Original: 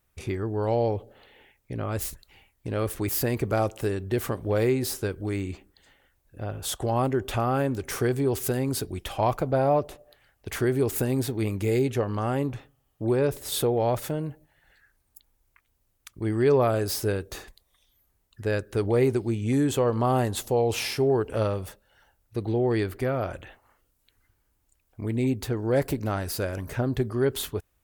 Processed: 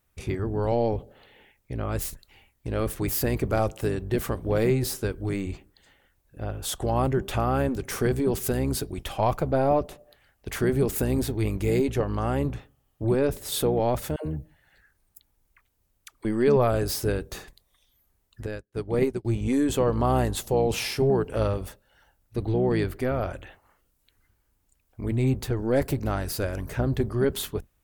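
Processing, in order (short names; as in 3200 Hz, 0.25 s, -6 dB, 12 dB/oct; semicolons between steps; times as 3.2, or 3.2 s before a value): octaver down 1 oct, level -4 dB; 14.16–16.25 dispersion lows, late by 97 ms, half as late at 490 Hz; 18.46–19.25 upward expander 2.5:1, over -41 dBFS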